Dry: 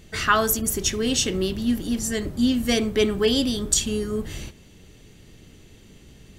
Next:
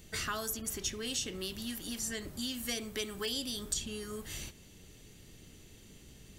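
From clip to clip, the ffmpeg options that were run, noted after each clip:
-filter_complex "[0:a]highshelf=f=5.3k:g=9.5,acrossover=split=750|4800[a][b][c];[a]acompressor=threshold=-35dB:ratio=4[d];[b]acompressor=threshold=-32dB:ratio=4[e];[c]acompressor=threshold=-33dB:ratio=4[f];[d][e][f]amix=inputs=3:normalize=0,volume=-7dB"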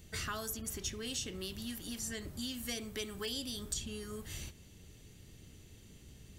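-filter_complex "[0:a]equalizer=f=84:w=0.81:g=6.5,asplit=2[a][b];[b]asoftclip=type=hard:threshold=-27.5dB,volume=-11.5dB[c];[a][c]amix=inputs=2:normalize=0,volume=-5.5dB"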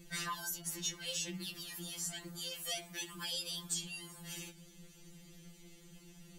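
-af "afftfilt=real='re*2.83*eq(mod(b,8),0)':imag='im*2.83*eq(mod(b,8),0)':win_size=2048:overlap=0.75,volume=3.5dB"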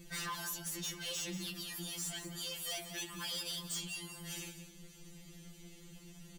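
-af "asoftclip=type=hard:threshold=-39dB,aecho=1:1:184:0.282,volume=2dB"

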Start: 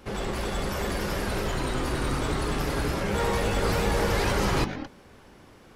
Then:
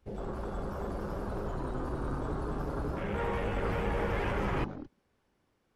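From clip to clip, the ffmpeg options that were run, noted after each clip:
-af "afwtdn=0.0251,volume=-6.5dB"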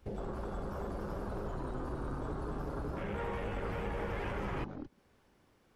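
-af "acompressor=threshold=-47dB:ratio=2.5,volume=6.5dB"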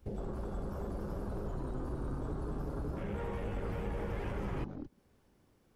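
-af "equalizer=f=1.8k:w=0.3:g=-7.5,volume=2dB"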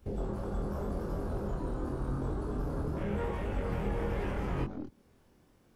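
-af "flanger=delay=22.5:depth=3.1:speed=0.87,volume=7dB"

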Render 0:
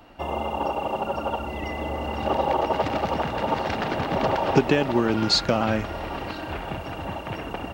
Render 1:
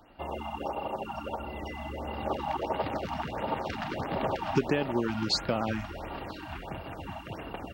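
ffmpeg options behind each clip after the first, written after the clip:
-af "afftfilt=real='re*(1-between(b*sr/1024,400*pow(7600/400,0.5+0.5*sin(2*PI*1.5*pts/sr))/1.41,400*pow(7600/400,0.5+0.5*sin(2*PI*1.5*pts/sr))*1.41))':imag='im*(1-between(b*sr/1024,400*pow(7600/400,0.5+0.5*sin(2*PI*1.5*pts/sr))/1.41,400*pow(7600/400,0.5+0.5*sin(2*PI*1.5*pts/sr))*1.41))':win_size=1024:overlap=0.75,volume=-7dB"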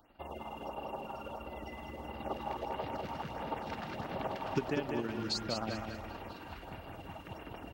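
-filter_complex "[0:a]highshelf=f=11k:g=7,tremolo=f=19:d=0.45,asplit=2[a][b];[b]aecho=0:1:197|394|591|788|985:0.562|0.214|0.0812|0.0309|0.0117[c];[a][c]amix=inputs=2:normalize=0,volume=-6dB"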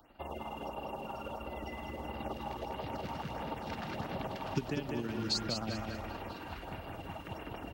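-filter_complex "[0:a]acrossover=split=250|3000[a][b][c];[b]acompressor=threshold=-41dB:ratio=6[d];[a][d][c]amix=inputs=3:normalize=0,volume=3dB"

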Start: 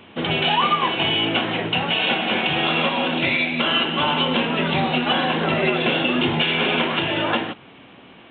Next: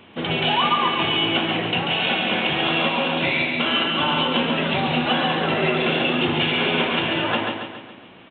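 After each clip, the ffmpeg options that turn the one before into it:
-af "aecho=1:1:139|278|417|556|695|834:0.562|0.276|0.135|0.0662|0.0324|0.0159,volume=-2dB"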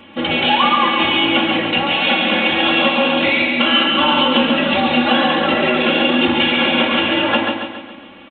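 -af "aecho=1:1:3.6:0.94,volume=3dB"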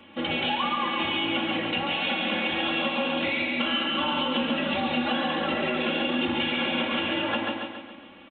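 -filter_complex "[0:a]acrossover=split=190[a][b];[b]acompressor=threshold=-16dB:ratio=3[c];[a][c]amix=inputs=2:normalize=0,volume=-8.5dB"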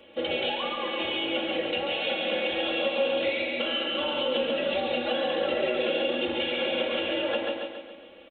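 -af "equalizer=f=125:t=o:w=1:g=-12,equalizer=f=250:t=o:w=1:g=-8,equalizer=f=500:t=o:w=1:g=11,equalizer=f=1k:t=o:w=1:g=-10,equalizer=f=2k:t=o:w=1:g=-3"

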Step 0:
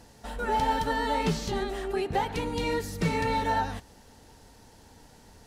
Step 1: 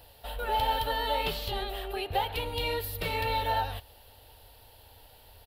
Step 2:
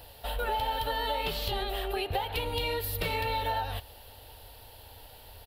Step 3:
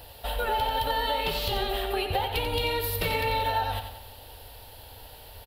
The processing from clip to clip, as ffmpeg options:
-af "firequalizer=gain_entry='entry(100,0);entry(170,-18);entry(570,2);entry(990,-3);entry(2000,-4);entry(2900,7);entry(4300,2);entry(6200,-16);entry(13000,14)':delay=0.05:min_phase=1"
-af "acompressor=threshold=-32dB:ratio=6,volume=4.5dB"
-af "aecho=1:1:90|180|270|360|450:0.398|0.187|0.0879|0.0413|0.0194,volume=3dB"

